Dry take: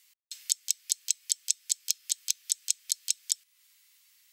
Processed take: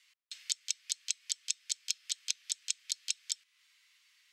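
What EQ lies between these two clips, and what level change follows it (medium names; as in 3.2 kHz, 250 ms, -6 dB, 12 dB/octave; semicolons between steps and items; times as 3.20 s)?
low-pass 2.2 kHz 12 dB/octave; tilt EQ +5 dB/octave; 0.0 dB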